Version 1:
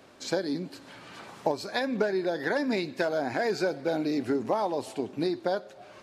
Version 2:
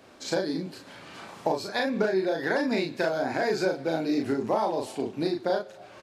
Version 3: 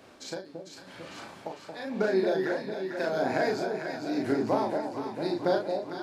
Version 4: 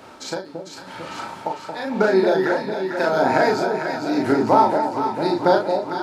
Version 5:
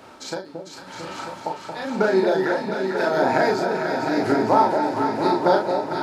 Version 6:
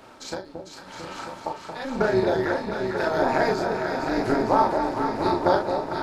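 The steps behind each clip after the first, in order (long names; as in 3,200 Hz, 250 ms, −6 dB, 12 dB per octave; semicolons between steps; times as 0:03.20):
double-tracking delay 37 ms −3 dB
amplitude tremolo 0.91 Hz, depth 94%; delay that swaps between a low-pass and a high-pass 225 ms, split 820 Hz, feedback 77%, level −4.5 dB
hollow resonant body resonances 910/1,300 Hz, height 13 dB, ringing for 45 ms; level +8.5 dB
feedback echo with a long and a short gap by turns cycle 949 ms, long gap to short 3 to 1, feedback 46%, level −8 dB; level −2 dB
amplitude modulation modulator 260 Hz, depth 45%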